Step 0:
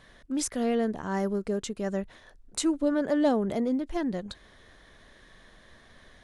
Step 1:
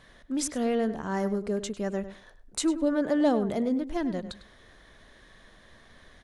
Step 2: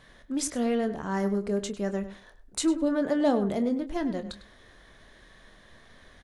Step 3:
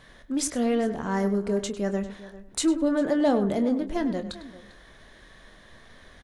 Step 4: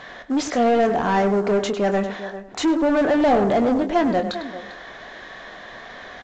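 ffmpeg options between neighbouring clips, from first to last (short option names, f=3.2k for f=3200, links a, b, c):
-filter_complex "[0:a]asplit=2[a][b];[b]adelay=101,lowpass=f=3.6k:p=1,volume=-12dB,asplit=2[c][d];[d]adelay=101,lowpass=f=3.6k:p=1,volume=0.15[e];[a][c][e]amix=inputs=3:normalize=0"
-filter_complex "[0:a]asplit=2[a][b];[b]adelay=25,volume=-10.5dB[c];[a][c]amix=inputs=2:normalize=0"
-filter_complex "[0:a]asplit=2[a][b];[b]asoftclip=type=tanh:threshold=-22.5dB,volume=-8dB[c];[a][c]amix=inputs=2:normalize=0,asplit=2[d][e];[e]adelay=396.5,volume=-17dB,highshelf=f=4k:g=-8.92[f];[d][f]amix=inputs=2:normalize=0"
-filter_complex "[0:a]asplit=2[a][b];[b]highpass=f=720:p=1,volume=24dB,asoftclip=type=tanh:threshold=-11dB[c];[a][c]amix=inputs=2:normalize=0,lowpass=f=1.8k:p=1,volume=-6dB,equalizer=f=730:w=7.4:g=7.5" -ar 16000 -c:a pcm_alaw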